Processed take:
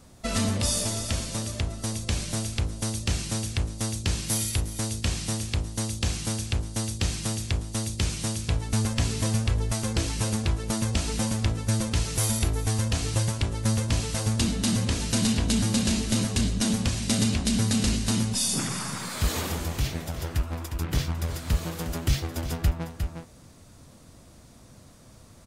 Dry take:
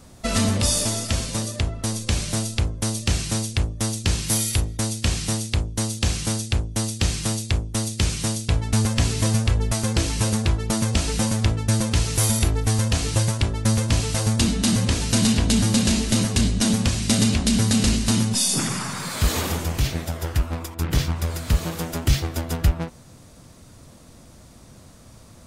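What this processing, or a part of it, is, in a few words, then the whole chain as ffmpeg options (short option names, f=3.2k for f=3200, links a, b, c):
ducked delay: -filter_complex "[0:a]asplit=3[a][b][c];[b]adelay=357,volume=-6dB[d];[c]apad=whole_len=1138768[e];[d][e]sidechaincompress=threshold=-31dB:ratio=4:attack=16:release=239[f];[a][f]amix=inputs=2:normalize=0,volume=-5dB"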